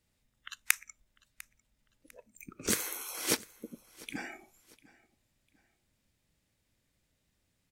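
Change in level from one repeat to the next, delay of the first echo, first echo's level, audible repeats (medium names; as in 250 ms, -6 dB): -9.5 dB, 699 ms, -22.0 dB, 2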